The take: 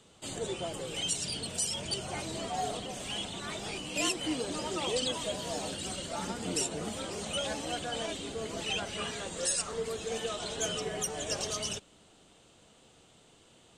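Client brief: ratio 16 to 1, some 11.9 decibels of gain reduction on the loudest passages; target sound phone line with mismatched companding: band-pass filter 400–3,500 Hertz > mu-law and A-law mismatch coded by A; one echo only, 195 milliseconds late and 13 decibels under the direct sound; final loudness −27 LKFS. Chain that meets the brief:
downward compressor 16 to 1, threshold −39 dBFS
band-pass filter 400–3,500 Hz
single-tap delay 195 ms −13 dB
mu-law and A-law mismatch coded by A
level +24 dB

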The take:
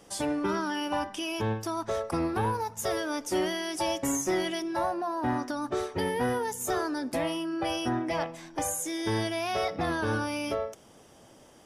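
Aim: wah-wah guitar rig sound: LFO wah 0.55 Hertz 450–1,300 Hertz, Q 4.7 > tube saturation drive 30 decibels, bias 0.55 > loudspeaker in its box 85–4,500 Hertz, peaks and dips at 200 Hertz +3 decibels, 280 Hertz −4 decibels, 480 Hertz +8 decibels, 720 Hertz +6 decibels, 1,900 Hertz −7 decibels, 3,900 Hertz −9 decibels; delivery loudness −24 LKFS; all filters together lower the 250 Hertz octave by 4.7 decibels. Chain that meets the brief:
parametric band 250 Hz −6 dB
LFO wah 0.55 Hz 450–1,300 Hz, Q 4.7
tube saturation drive 30 dB, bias 0.55
loudspeaker in its box 85–4,500 Hz, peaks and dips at 200 Hz +3 dB, 280 Hz −4 dB, 480 Hz +8 dB, 720 Hz +6 dB, 1,900 Hz −7 dB, 3,900 Hz −9 dB
level +16.5 dB

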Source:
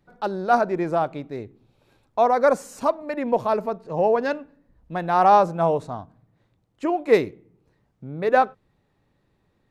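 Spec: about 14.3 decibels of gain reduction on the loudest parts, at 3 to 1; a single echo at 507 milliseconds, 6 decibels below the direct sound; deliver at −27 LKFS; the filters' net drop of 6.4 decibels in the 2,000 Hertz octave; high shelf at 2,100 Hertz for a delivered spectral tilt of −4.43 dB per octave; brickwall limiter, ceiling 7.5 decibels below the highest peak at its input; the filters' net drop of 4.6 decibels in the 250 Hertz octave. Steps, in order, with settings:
parametric band 250 Hz −6.5 dB
parametric band 2,000 Hz −5.5 dB
high-shelf EQ 2,100 Hz −7 dB
downward compressor 3 to 1, threshold −33 dBFS
brickwall limiter −27.5 dBFS
single-tap delay 507 ms −6 dB
level +11 dB

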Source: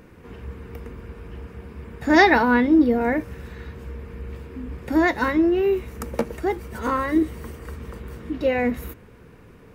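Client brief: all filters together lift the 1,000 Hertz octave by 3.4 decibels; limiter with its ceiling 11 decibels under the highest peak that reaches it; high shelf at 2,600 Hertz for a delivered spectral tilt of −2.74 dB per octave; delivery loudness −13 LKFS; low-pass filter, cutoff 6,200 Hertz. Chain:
low-pass filter 6,200 Hz
parametric band 1,000 Hz +5.5 dB
high-shelf EQ 2,600 Hz −8.5 dB
level +10.5 dB
brickwall limiter −3 dBFS

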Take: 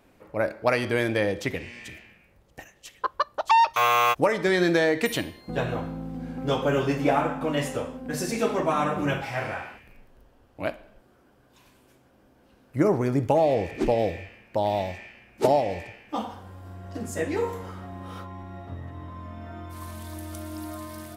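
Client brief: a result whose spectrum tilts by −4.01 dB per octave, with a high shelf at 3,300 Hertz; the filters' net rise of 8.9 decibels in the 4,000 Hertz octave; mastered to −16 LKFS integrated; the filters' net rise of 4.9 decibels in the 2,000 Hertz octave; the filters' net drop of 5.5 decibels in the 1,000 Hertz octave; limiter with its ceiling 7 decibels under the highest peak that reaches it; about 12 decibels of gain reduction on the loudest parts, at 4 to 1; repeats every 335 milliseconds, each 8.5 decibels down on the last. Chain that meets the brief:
parametric band 1,000 Hz −9 dB
parametric band 2,000 Hz +4.5 dB
high-shelf EQ 3,300 Hz +8.5 dB
parametric band 4,000 Hz +4.5 dB
downward compressor 4 to 1, threshold −32 dBFS
brickwall limiter −24.5 dBFS
repeating echo 335 ms, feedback 38%, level −8.5 dB
level +20 dB

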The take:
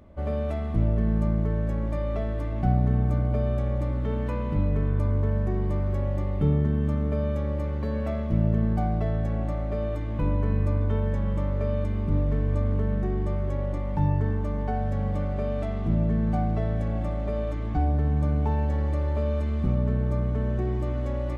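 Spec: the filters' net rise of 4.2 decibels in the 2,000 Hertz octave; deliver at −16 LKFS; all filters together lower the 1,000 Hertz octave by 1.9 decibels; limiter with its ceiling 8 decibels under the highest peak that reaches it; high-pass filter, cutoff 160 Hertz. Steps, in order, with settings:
high-pass filter 160 Hz
parametric band 1,000 Hz −4 dB
parametric band 2,000 Hz +6.5 dB
level +17 dB
brickwall limiter −6 dBFS

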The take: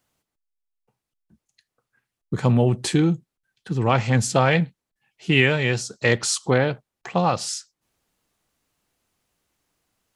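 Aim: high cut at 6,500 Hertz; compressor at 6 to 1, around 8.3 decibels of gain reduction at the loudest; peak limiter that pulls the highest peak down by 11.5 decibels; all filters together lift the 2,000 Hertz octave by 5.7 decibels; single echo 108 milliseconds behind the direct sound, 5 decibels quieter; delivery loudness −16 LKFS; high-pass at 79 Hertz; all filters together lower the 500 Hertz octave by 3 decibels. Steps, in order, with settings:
high-pass filter 79 Hz
low-pass filter 6,500 Hz
parametric band 500 Hz −4 dB
parametric band 2,000 Hz +7 dB
downward compressor 6 to 1, threshold −19 dBFS
brickwall limiter −16.5 dBFS
single-tap delay 108 ms −5 dB
level +11 dB

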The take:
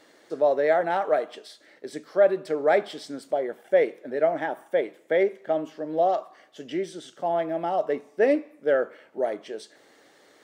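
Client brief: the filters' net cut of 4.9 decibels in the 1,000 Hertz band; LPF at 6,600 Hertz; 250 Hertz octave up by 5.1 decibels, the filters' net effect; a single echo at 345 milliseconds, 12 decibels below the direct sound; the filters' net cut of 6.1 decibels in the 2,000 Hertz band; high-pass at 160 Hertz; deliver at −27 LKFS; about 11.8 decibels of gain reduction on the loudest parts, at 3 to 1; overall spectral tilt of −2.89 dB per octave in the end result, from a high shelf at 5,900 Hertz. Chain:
high-pass filter 160 Hz
low-pass filter 6,600 Hz
parametric band 250 Hz +8.5 dB
parametric band 1,000 Hz −8.5 dB
parametric band 2,000 Hz −4 dB
high-shelf EQ 5,900 Hz −5.5 dB
downward compressor 3 to 1, threshold −32 dBFS
single-tap delay 345 ms −12 dB
level +8 dB

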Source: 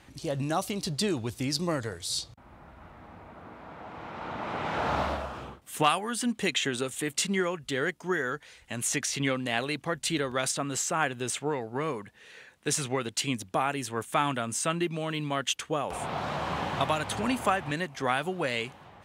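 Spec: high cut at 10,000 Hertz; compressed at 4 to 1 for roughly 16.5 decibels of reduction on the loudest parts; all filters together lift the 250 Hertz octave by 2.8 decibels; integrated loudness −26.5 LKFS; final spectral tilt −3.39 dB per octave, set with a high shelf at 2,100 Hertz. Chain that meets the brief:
low-pass filter 10,000 Hz
parametric band 250 Hz +3.5 dB
high-shelf EQ 2,100 Hz +3.5 dB
downward compressor 4 to 1, threshold −39 dBFS
level +14.5 dB

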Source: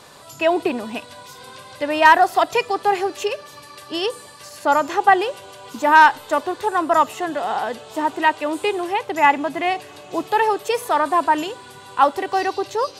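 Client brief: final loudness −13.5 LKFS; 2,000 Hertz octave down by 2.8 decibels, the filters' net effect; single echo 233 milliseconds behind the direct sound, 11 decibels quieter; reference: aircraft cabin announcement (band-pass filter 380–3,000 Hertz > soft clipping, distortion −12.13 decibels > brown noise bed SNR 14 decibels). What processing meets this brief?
band-pass filter 380–3,000 Hz
parametric band 2,000 Hz −3 dB
single-tap delay 233 ms −11 dB
soft clipping −12 dBFS
brown noise bed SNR 14 dB
level +9.5 dB

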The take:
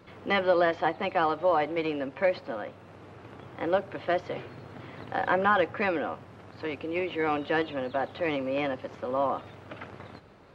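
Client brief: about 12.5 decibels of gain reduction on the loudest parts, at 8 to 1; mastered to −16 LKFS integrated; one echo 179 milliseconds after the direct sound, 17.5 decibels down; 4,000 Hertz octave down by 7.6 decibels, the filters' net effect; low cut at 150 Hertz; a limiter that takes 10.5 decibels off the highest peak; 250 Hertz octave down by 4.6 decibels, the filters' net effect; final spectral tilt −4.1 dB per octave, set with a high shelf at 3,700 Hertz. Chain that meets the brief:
high-pass filter 150 Hz
parametric band 250 Hz −6 dB
high-shelf EQ 3,700 Hz −8 dB
parametric band 4,000 Hz −6.5 dB
downward compressor 8 to 1, threshold −34 dBFS
brickwall limiter −33 dBFS
single-tap delay 179 ms −17.5 dB
level +27.5 dB

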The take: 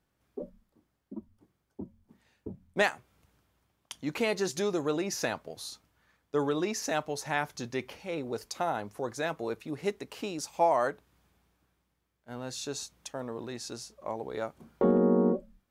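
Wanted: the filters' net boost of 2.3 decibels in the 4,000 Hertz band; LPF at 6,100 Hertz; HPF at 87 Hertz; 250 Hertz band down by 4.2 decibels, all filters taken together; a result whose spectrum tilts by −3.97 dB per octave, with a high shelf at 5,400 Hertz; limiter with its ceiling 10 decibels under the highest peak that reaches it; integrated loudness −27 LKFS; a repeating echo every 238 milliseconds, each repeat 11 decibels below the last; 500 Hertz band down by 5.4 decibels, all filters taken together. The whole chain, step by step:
high-pass filter 87 Hz
low-pass filter 6,100 Hz
parametric band 250 Hz −3.5 dB
parametric band 500 Hz −6 dB
parametric band 4,000 Hz +5.5 dB
high-shelf EQ 5,400 Hz −4 dB
brickwall limiter −22.5 dBFS
repeating echo 238 ms, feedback 28%, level −11 dB
level +10 dB

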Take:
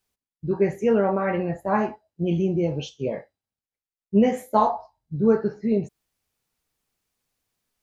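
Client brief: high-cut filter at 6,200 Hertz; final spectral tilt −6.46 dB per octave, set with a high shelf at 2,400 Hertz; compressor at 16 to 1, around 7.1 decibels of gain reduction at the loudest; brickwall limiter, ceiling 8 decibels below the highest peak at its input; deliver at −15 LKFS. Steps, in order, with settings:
low-pass filter 6,200 Hz
high-shelf EQ 2,400 Hz −7.5 dB
downward compressor 16 to 1, threshold −20 dBFS
level +15 dB
brickwall limiter −4.5 dBFS

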